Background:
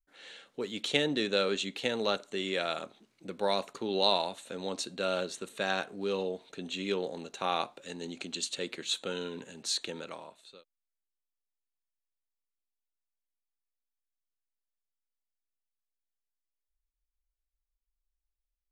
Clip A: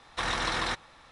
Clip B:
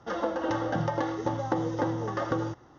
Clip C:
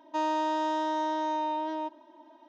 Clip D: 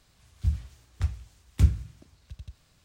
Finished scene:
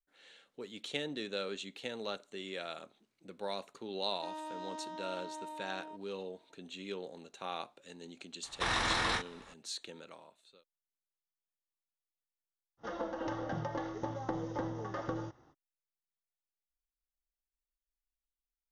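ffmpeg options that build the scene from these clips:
-filter_complex "[0:a]volume=-9.5dB[a];[1:a]asplit=2[b][c];[c]adelay=39,volume=-6dB[d];[b][d]amix=inputs=2:normalize=0[e];[2:a]tremolo=f=300:d=0.4[f];[3:a]atrim=end=2.48,asetpts=PTS-STARTPTS,volume=-15dB,afade=t=in:d=0.004:c=hsin,afade=t=out:st=2.476:d=0.004:c=hsin,adelay=4080[g];[e]atrim=end=1.11,asetpts=PTS-STARTPTS,volume=-2.5dB,afade=t=in:d=0.004:c=hsin,afade=t=out:st=1.106:d=0.004:c=hsin,adelay=8430[h];[f]atrim=end=2.78,asetpts=PTS-STARTPTS,volume=-7dB,afade=t=in:d=0.05,afade=t=out:st=2.73:d=0.05,adelay=12770[i];[a][g][h][i]amix=inputs=4:normalize=0"

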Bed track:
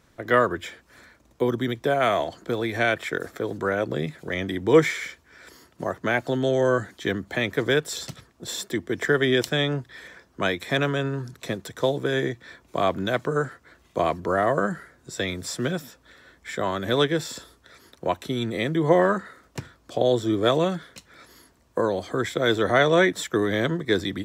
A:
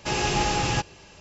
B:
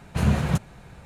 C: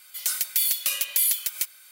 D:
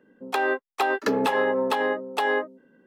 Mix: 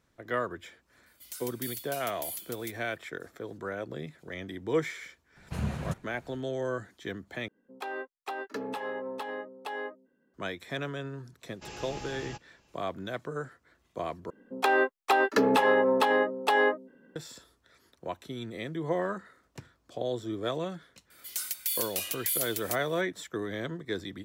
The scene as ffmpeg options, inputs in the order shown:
-filter_complex "[3:a]asplit=2[a][b];[4:a]asplit=2[c][d];[0:a]volume=-11.5dB[e];[a]acrusher=bits=7:mode=log:mix=0:aa=0.000001[f];[e]asplit=3[g][h][i];[g]atrim=end=7.484[j];[c]atrim=end=2.86,asetpts=PTS-STARTPTS,volume=-13dB[k];[h]atrim=start=10.336:end=14.304[l];[d]atrim=end=2.86[m];[i]atrim=start=17.156[n];[f]atrim=end=1.91,asetpts=PTS-STARTPTS,volume=-16.5dB,afade=t=in:d=0.004:c=hsin,afade=t=out:st=1.906:d=0.004:c=hsin,adelay=1060[o];[2:a]atrim=end=1.05,asetpts=PTS-STARTPTS,volume=-11dB,afade=t=in:d=0.004:c=hsin,afade=t=out:st=1.046:d=0.004:c=hsin,adelay=5360[p];[1:a]atrim=end=1.2,asetpts=PTS-STARTPTS,volume=-18dB,afade=t=in:d=0.004:c=hsin,afade=t=out:st=1.196:d=0.004:c=hsin,adelay=11560[q];[b]atrim=end=1.91,asetpts=PTS-STARTPTS,volume=-8dB,afade=t=in:d=0.004:c=hsin,afade=t=out:st=1.906:d=0.004:c=hsin,adelay=21100[r];[j][k]acrossfade=d=0.004:c1=hsin:c2=hsin[s];[s][l]acrossfade=d=0.004:c1=hsin:c2=hsin[t];[t][m]acrossfade=d=0.004:c1=hsin:c2=hsin[u];[u][n]acrossfade=d=0.004:c1=hsin:c2=hsin[v];[v][o][p][q][r]amix=inputs=5:normalize=0"

